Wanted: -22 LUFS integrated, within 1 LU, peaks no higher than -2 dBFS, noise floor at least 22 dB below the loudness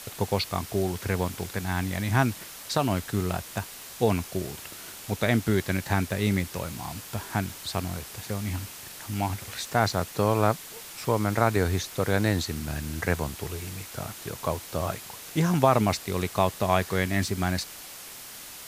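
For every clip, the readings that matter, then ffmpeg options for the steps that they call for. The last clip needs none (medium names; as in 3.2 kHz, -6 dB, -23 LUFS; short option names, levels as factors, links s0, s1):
noise floor -43 dBFS; noise floor target -50 dBFS; loudness -28.0 LUFS; peak level -4.0 dBFS; loudness target -22.0 LUFS
-> -af "afftdn=nr=7:nf=-43"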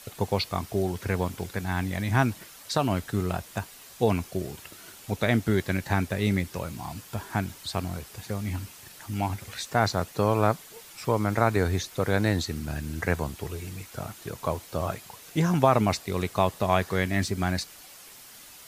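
noise floor -48 dBFS; noise floor target -50 dBFS
-> -af "afftdn=nr=6:nf=-48"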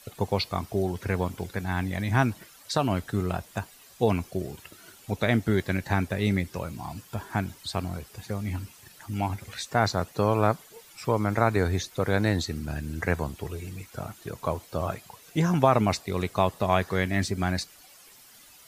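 noise floor -53 dBFS; loudness -28.0 LUFS; peak level -4.5 dBFS; loudness target -22.0 LUFS
-> -af "volume=2,alimiter=limit=0.794:level=0:latency=1"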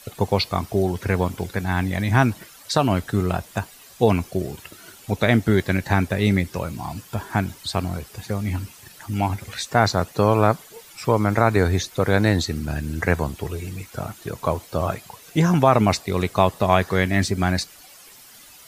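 loudness -22.5 LUFS; peak level -2.0 dBFS; noise floor -47 dBFS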